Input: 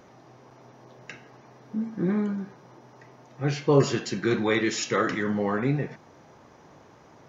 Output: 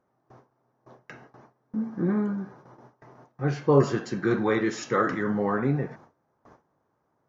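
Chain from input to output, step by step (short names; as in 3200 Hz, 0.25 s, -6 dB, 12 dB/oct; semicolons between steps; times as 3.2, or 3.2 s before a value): resonant high shelf 1900 Hz -7.5 dB, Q 1.5; gate with hold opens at -40 dBFS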